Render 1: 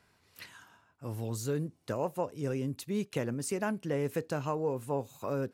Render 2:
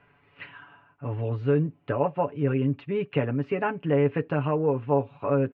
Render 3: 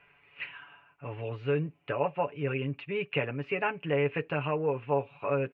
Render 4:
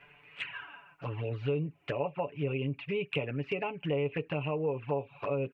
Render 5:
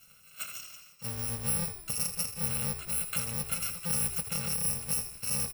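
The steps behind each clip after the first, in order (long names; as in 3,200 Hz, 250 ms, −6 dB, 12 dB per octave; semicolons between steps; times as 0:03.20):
elliptic low-pass filter 2,800 Hz, stop band 80 dB; comb filter 7 ms, depth 70%; level +6.5 dB
graphic EQ with 15 bands 100 Hz −8 dB, 250 Hz −8 dB, 2,500 Hz +11 dB; level −3.5 dB
downward compressor 2.5 to 1, threshold −39 dBFS, peak gain reduction 11.5 dB; flanger swept by the level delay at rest 8.2 ms, full sweep at −35 dBFS; level +7.5 dB
samples in bit-reversed order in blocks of 128 samples; echo with shifted repeats 81 ms, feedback 49%, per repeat −67 Hz, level −10 dB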